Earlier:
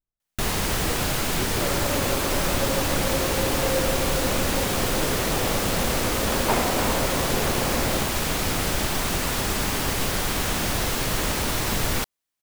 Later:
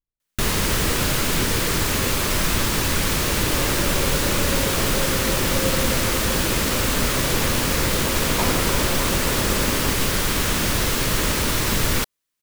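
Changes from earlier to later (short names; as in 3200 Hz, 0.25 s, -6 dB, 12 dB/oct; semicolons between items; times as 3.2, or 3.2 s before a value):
first sound +4.0 dB; second sound: entry +1.90 s; master: add bell 750 Hz -7.5 dB 0.44 oct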